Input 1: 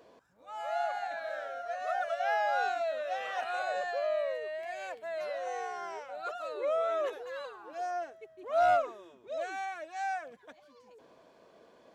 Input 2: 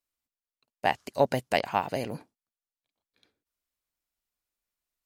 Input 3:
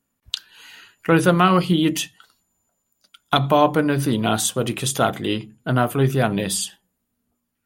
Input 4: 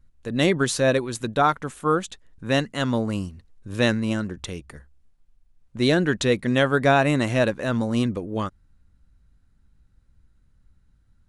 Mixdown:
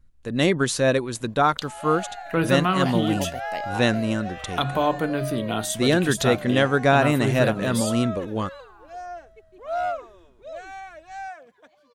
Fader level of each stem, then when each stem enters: −1.0, −9.5, −6.5, 0.0 decibels; 1.15, 2.00, 1.25, 0.00 seconds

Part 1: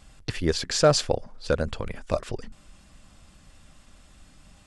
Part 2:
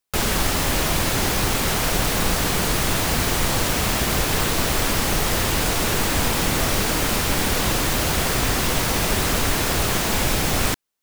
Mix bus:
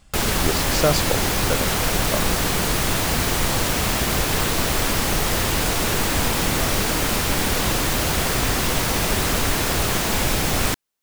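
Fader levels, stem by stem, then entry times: −1.0, 0.0 decibels; 0.00, 0.00 seconds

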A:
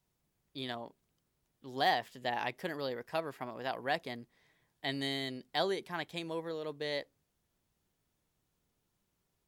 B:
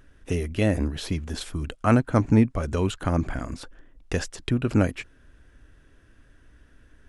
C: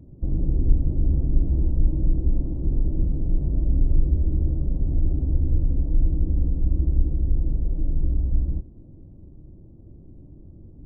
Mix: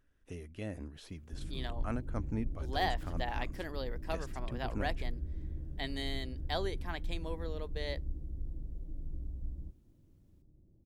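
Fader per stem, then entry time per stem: −3.5, −18.5, −18.5 decibels; 0.95, 0.00, 1.10 seconds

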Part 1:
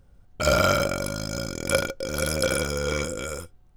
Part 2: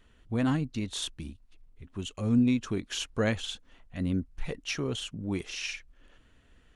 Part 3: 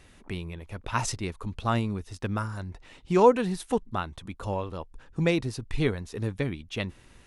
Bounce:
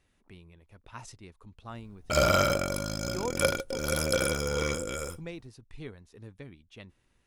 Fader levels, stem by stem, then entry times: −3.0 dB, muted, −16.5 dB; 1.70 s, muted, 0.00 s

